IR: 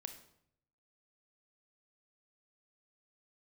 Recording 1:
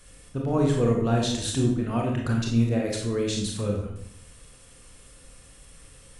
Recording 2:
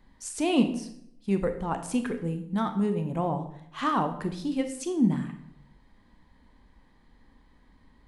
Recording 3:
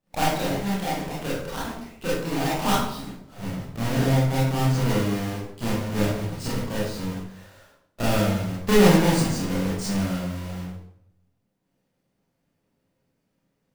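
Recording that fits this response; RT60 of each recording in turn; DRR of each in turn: 2; 0.70 s, 0.70 s, 0.70 s; -1.0 dB, 7.5 dB, -8.5 dB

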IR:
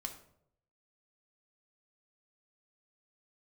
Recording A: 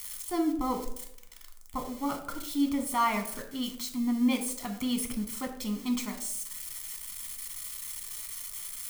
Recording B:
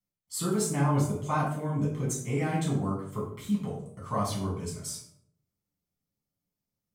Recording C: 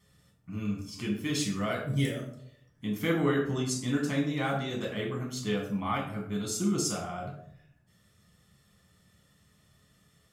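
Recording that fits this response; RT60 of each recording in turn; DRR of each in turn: A; 0.70 s, 0.70 s, 0.70 s; 4.0 dB, -6.5 dB, -2.0 dB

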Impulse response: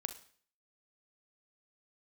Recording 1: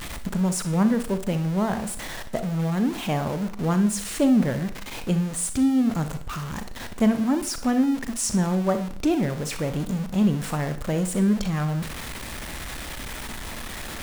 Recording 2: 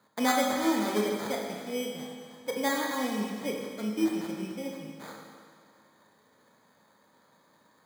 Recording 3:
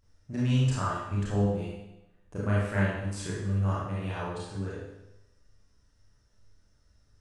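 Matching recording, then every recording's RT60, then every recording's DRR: 1; 0.50 s, 2.0 s, 0.90 s; 9.0 dB, -0.5 dB, -8.5 dB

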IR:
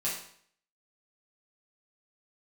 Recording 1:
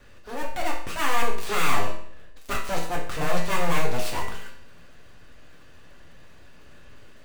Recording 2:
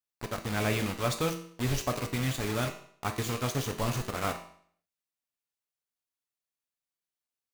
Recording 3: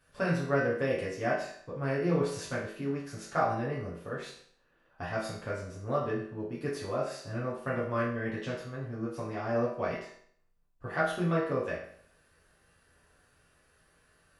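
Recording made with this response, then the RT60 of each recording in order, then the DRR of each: 3; 0.60 s, 0.60 s, 0.60 s; -2.5 dB, 4.5 dB, -8.0 dB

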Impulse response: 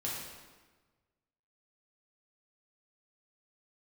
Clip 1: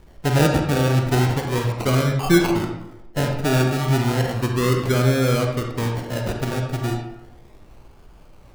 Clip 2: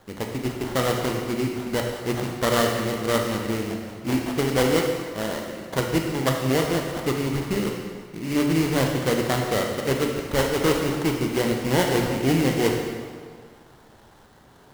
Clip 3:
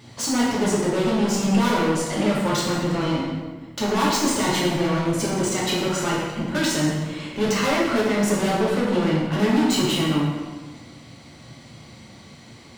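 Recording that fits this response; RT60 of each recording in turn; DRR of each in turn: 3; 0.90 s, 1.8 s, 1.3 s; 2.0 dB, 1.5 dB, -6.0 dB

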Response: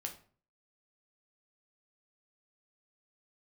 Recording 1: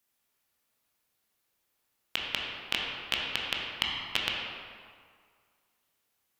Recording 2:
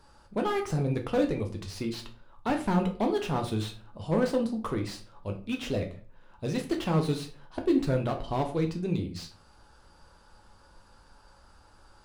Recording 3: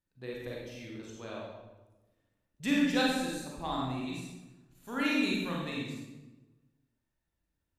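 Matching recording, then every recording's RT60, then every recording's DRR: 2; 2.0 s, 0.45 s, 1.1 s; -2.5 dB, 2.5 dB, -4.0 dB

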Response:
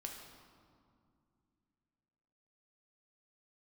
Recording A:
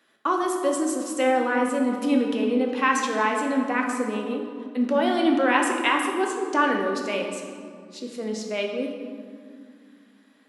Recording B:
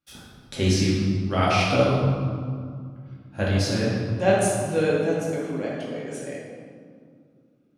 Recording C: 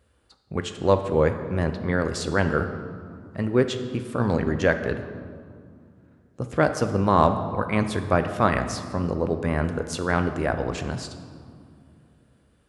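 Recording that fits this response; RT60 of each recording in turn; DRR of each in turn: A; 2.3 s, 2.3 s, 2.5 s; 1.0 dB, -6.5 dB, 7.5 dB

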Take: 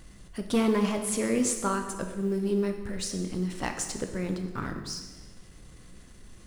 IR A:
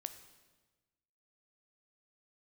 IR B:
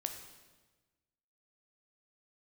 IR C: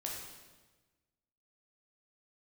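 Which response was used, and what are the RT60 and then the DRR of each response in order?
B; 1.3 s, 1.3 s, 1.3 s; 9.5 dB, 5.0 dB, -2.5 dB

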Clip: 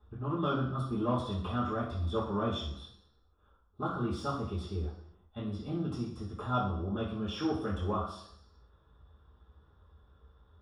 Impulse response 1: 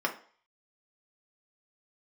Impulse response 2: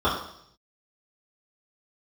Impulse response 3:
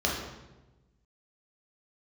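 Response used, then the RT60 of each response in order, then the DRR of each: 2; 0.45 s, 0.70 s, 1.1 s; 0.5 dB, -11.0 dB, -3.5 dB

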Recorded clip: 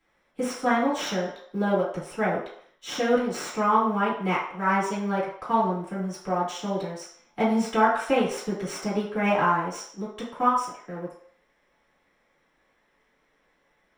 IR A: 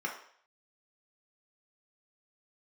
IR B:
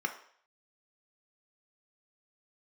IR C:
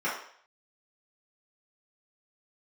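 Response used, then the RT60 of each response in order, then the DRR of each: C; 0.60 s, 0.60 s, 0.60 s; -1.0 dB, 4.5 dB, -10.0 dB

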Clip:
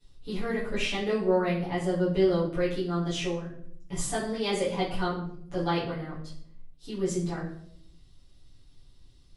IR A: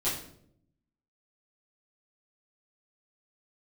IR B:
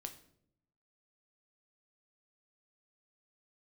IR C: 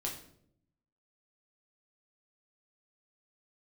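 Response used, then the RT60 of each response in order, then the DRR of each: A; 0.70 s, 0.70 s, 0.70 s; -12.0 dB, 5.5 dB, -2.0 dB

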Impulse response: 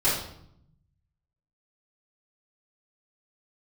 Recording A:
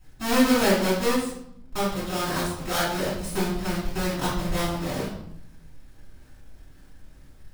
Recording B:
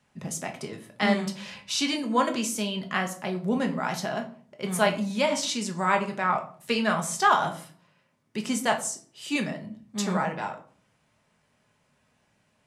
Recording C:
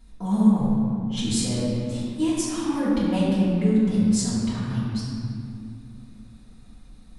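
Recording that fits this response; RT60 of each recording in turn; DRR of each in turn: A; 0.70 s, 0.45 s, 2.5 s; -10.5 dB, 3.0 dB, -11.0 dB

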